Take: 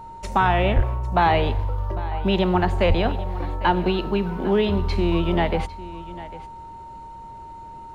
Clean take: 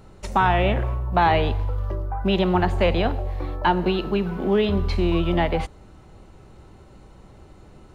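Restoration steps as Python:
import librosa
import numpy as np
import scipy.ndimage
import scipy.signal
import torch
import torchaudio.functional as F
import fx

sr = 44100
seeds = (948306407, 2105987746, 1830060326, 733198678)

y = fx.notch(x, sr, hz=920.0, q=30.0)
y = fx.highpass(y, sr, hz=140.0, slope=24, at=(0.75, 0.87), fade=0.02)
y = fx.highpass(y, sr, hz=140.0, slope=24, at=(2.88, 3.0), fade=0.02)
y = fx.fix_echo_inverse(y, sr, delay_ms=801, level_db=-16.5)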